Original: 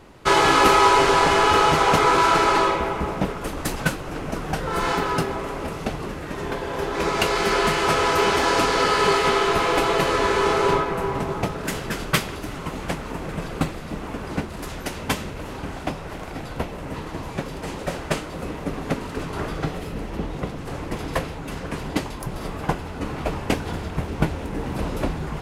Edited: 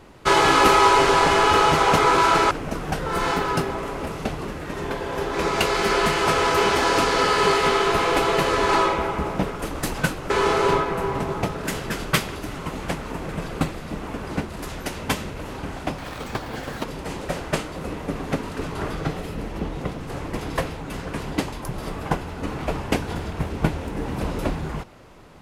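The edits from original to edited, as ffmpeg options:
ffmpeg -i in.wav -filter_complex "[0:a]asplit=6[link_01][link_02][link_03][link_04][link_05][link_06];[link_01]atrim=end=2.512[link_07];[link_02]atrim=start=4.118:end=10.302[link_08];[link_03]atrim=start=2.508:end=4.122[link_09];[link_04]atrim=start=10.298:end=15.984[link_10];[link_05]atrim=start=15.98:end=17.42,asetpts=PTS-STARTPTS,asetrate=73647,aresample=44100,atrim=end_sample=38026,asetpts=PTS-STARTPTS[link_11];[link_06]atrim=start=17.416[link_12];[link_07][link_08]acrossfade=duration=0.004:curve1=hsin:curve2=hsin[link_13];[link_13][link_09]acrossfade=duration=0.004:curve1=hsin:curve2=hsin[link_14];[link_14][link_10]acrossfade=duration=0.004:curve1=hsin:curve2=hsin[link_15];[link_15][link_11]acrossfade=duration=0.004:curve1=hsin:curve2=hsin[link_16];[link_16][link_12]acrossfade=duration=0.004:curve1=hsin:curve2=hsin" out.wav

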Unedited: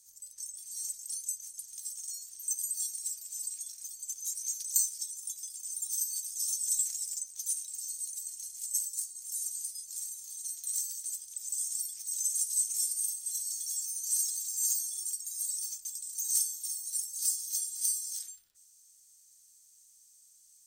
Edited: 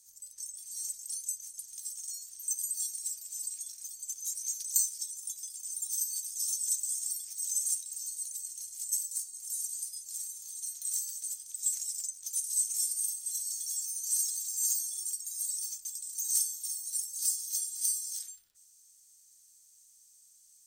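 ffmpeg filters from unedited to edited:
ffmpeg -i in.wav -filter_complex "[0:a]asplit=5[link_01][link_02][link_03][link_04][link_05];[link_01]atrim=end=6.762[link_06];[link_02]atrim=start=11.448:end=12.442[link_07];[link_03]atrim=start=7.568:end=11.452[link_08];[link_04]atrim=start=6.758:end=7.572[link_09];[link_05]atrim=start=12.438[link_10];[link_06][link_07]acrossfade=duration=0.004:curve1=hsin:curve2=hsin[link_11];[link_11][link_08]acrossfade=duration=0.004:curve1=hsin:curve2=hsin[link_12];[link_12][link_09]acrossfade=duration=0.004:curve1=hsin:curve2=hsin[link_13];[link_13][link_10]acrossfade=duration=0.004:curve1=hsin:curve2=hsin" out.wav

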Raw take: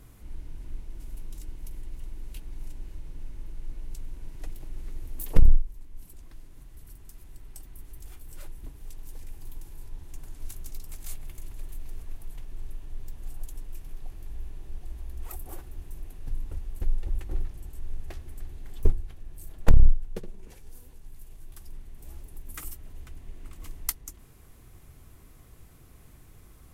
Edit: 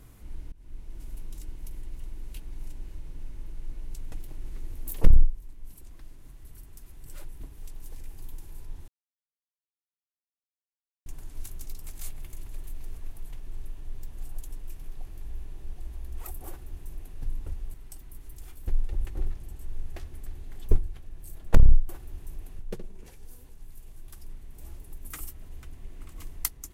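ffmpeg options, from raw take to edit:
ffmpeg -i in.wav -filter_complex "[0:a]asplit=9[link_01][link_02][link_03][link_04][link_05][link_06][link_07][link_08][link_09];[link_01]atrim=end=0.52,asetpts=PTS-STARTPTS,afade=type=out:start_time=0.516:duration=0.004:curve=hsin:silence=0.0707946[link_10];[link_02]atrim=start=0.52:end=4.122,asetpts=PTS-STARTPTS,afade=type=in:duration=0.59:curve=qsin:silence=0.0707946[link_11];[link_03]atrim=start=4.438:end=7.382[link_12];[link_04]atrim=start=8.288:end=10.11,asetpts=PTS-STARTPTS,afade=type=out:start_time=1.818:duration=0.004:curve=hsin,apad=pad_dur=2.18[link_13];[link_05]atrim=start=10.11:end=16.792,asetpts=PTS-STARTPTS,afade=type=in:duration=0.004:curve=hsin[link_14];[link_06]atrim=start=7.378:end=8.292[link_15];[link_07]atrim=start=16.788:end=20.032[link_16];[link_08]atrim=start=15.528:end=16.232[link_17];[link_09]atrim=start=20.028[link_18];[link_10][link_11]concat=n=2:v=0:a=1[link_19];[link_19][link_12]acrossfade=duration=0.004:curve1=hsin:curve2=hsin[link_20];[link_13][link_14]concat=n=2:v=0:a=1[link_21];[link_20][link_21]acrossfade=duration=0.004:curve1=hsin:curve2=hsin[link_22];[link_22][link_15]acrossfade=duration=0.004:curve1=hsin:curve2=hsin[link_23];[link_23][link_16]acrossfade=duration=0.004:curve1=hsin:curve2=hsin[link_24];[link_24][link_17]acrossfade=duration=0.004:curve1=hsin:curve2=hsin[link_25];[link_25][link_18]acrossfade=duration=0.004:curve1=hsin:curve2=hsin" out.wav

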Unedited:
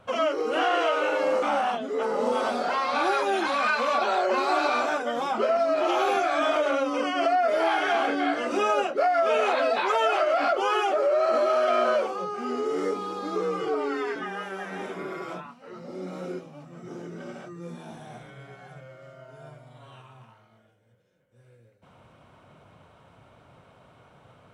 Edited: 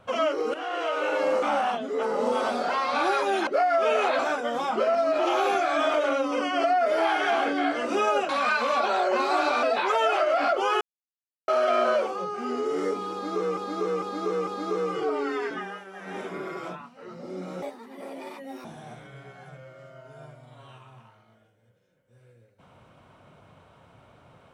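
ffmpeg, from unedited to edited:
ffmpeg -i in.wav -filter_complex "[0:a]asplit=15[link_01][link_02][link_03][link_04][link_05][link_06][link_07][link_08][link_09][link_10][link_11][link_12][link_13][link_14][link_15];[link_01]atrim=end=0.54,asetpts=PTS-STARTPTS,afade=type=out:start_time=0.536:duration=0.004:curve=hsin:silence=0.223872[link_16];[link_02]atrim=start=0.54:end=3.472,asetpts=PTS-STARTPTS,afade=type=in:duration=0.65:silence=0.223872[link_17];[link_03]atrim=start=8.908:end=9.632[link_18];[link_04]atrim=start=4.808:end=8.912[link_19];[link_05]atrim=start=3.468:end=4.812[link_20];[link_06]atrim=start=9.628:end=10.81,asetpts=PTS-STARTPTS,afade=type=out:start_time=1.178:duration=0.004:curve=hsin[link_21];[link_07]atrim=start=10.81:end=11.48,asetpts=PTS-STARTPTS,volume=0[link_22];[link_08]atrim=start=11.48:end=13.572,asetpts=PTS-STARTPTS,afade=type=in:duration=0.004:curve=hsin[link_23];[link_09]atrim=start=13.118:end=13.572[link_24];[link_10]atrim=start=13.118:end=13.572[link_25];[link_11]atrim=start=13.118:end=14.5,asetpts=PTS-STARTPTS,afade=type=out:start_time=1.112:duration=0.27:silence=0.354813[link_26];[link_12]atrim=start=14.5:end=14.57,asetpts=PTS-STARTPTS,volume=-9dB[link_27];[link_13]atrim=start=14.57:end=16.274,asetpts=PTS-STARTPTS,afade=type=in:duration=0.27:silence=0.354813[link_28];[link_14]atrim=start=16.27:end=17.88,asetpts=PTS-STARTPTS,asetrate=69237,aresample=44100[link_29];[link_15]atrim=start=17.876[link_30];[link_16][link_17]concat=n=2:v=0:a=1[link_31];[link_31][link_18]acrossfade=duration=0.004:curve1=hsin:curve2=hsin[link_32];[link_32][link_19]acrossfade=duration=0.004:curve1=hsin:curve2=hsin[link_33];[link_33][link_20]acrossfade=duration=0.004:curve1=hsin:curve2=hsin[link_34];[link_21][link_22][link_23]concat=n=3:v=0:a=1[link_35];[link_34][link_35]acrossfade=duration=0.004:curve1=hsin:curve2=hsin[link_36];[link_36][link_24]acrossfade=duration=0.004:curve1=hsin:curve2=hsin[link_37];[link_37][link_25]acrossfade=duration=0.004:curve1=hsin:curve2=hsin[link_38];[link_26][link_27][link_28]concat=n=3:v=0:a=1[link_39];[link_38][link_39]acrossfade=duration=0.004:curve1=hsin:curve2=hsin[link_40];[link_40][link_29]acrossfade=duration=0.004:curve1=hsin:curve2=hsin[link_41];[link_41][link_30]acrossfade=duration=0.004:curve1=hsin:curve2=hsin" out.wav

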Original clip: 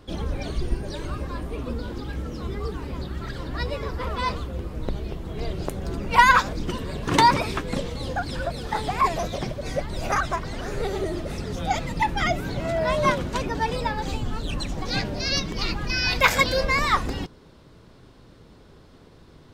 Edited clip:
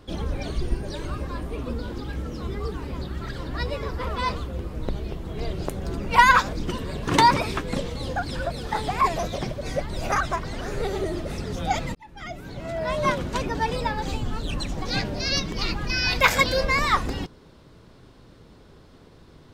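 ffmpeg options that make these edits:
ffmpeg -i in.wav -filter_complex "[0:a]asplit=2[link_01][link_02];[link_01]atrim=end=11.95,asetpts=PTS-STARTPTS,afade=type=out:start_time=11.946:duration=0.004:curve=hsin[link_03];[link_02]atrim=start=11.95,asetpts=PTS-STARTPTS,afade=type=in:duration=1.41[link_04];[link_03][link_04]concat=n=2:v=0:a=1" out.wav

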